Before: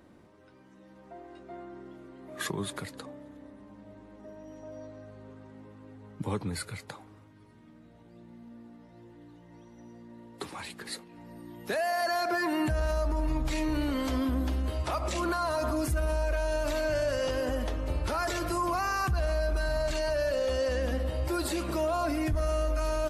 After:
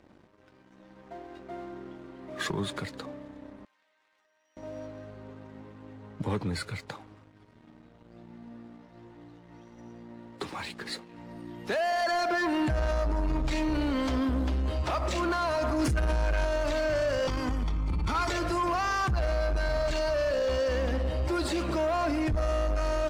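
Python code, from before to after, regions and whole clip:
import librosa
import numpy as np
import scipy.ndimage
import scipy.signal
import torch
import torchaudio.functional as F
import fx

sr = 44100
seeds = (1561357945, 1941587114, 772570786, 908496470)

y = fx.chain(x, sr, fx.cheby1_highpass(hz=2000.0, order=2),
    fx.env_flatten(amount_pct=100), at=(3.65, 4.57))
y = fx.chain(y, sr, fx.peak_eq(hz=690.0, db=-8.0, octaves=0.36),
    fx.env_flatten(amount_pct=100), at=(15.79, 16.45))
y = fx.chain(y, sr, fx.comb(ms=0.9, depth=0.83),
    fx.transformer_sat(knee_hz=150.0), at=(17.27, 18.3))
y = scipy.signal.sosfilt(scipy.signal.butter(2, 6200.0, 'lowpass', fs=sr, output='sos'), y)
y = fx.leveller(y, sr, passes=2)
y = y * 10.0 ** (-4.0 / 20.0)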